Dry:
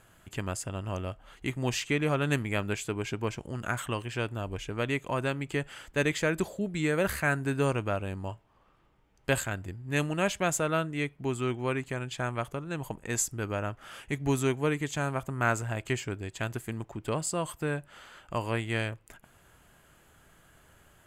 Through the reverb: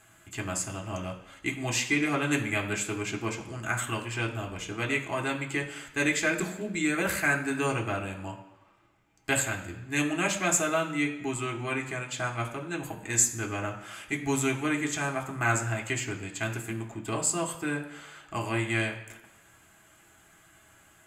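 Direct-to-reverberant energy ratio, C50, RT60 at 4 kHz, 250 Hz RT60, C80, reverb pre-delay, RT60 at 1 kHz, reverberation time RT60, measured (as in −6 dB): 0.5 dB, 10.0 dB, 1.0 s, 0.95 s, 12.0 dB, 3 ms, 1.1 s, 1.1 s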